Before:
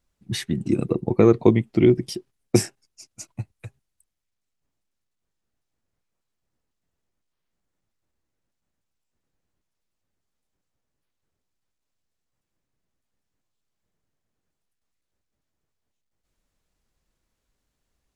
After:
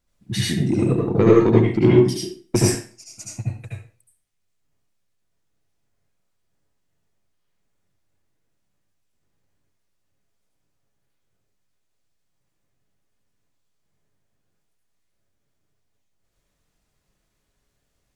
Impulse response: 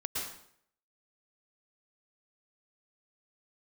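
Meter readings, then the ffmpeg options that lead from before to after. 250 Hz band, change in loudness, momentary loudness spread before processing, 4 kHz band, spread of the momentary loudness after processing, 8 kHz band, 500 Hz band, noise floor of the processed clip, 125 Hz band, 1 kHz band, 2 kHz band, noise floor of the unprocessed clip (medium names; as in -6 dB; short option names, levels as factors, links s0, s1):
+2.5 dB, +2.5 dB, 19 LU, +5.0 dB, 18 LU, +5.5 dB, +3.0 dB, -72 dBFS, +5.0 dB, +4.0 dB, +4.5 dB, -81 dBFS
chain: -filter_complex "[0:a]acontrast=85[s0];[1:a]atrim=start_sample=2205,asetrate=70560,aresample=44100[s1];[s0][s1]afir=irnorm=-1:irlink=0,volume=0.891"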